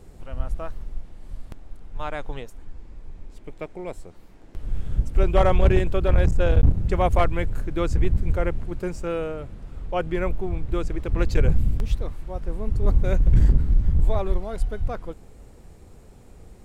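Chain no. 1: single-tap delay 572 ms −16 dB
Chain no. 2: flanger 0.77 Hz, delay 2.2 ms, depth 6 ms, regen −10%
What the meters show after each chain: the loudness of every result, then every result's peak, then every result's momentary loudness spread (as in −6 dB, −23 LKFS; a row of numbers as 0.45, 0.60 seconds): −25.0, −28.5 LKFS; −7.5, −8.5 dBFS; 21, 20 LU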